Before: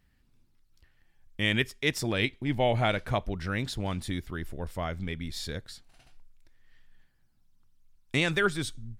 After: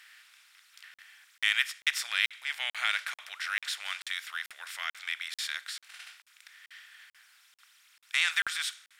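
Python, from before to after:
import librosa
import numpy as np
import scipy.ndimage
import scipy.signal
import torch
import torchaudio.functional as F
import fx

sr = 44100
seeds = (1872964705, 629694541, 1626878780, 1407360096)

y = fx.bin_compress(x, sr, power=0.6)
y = scipy.signal.sosfilt(scipy.signal.butter(4, 1400.0, 'highpass', fs=sr, output='sos'), y)
y = fx.buffer_crackle(y, sr, first_s=0.94, period_s=0.44, block=2048, kind='zero')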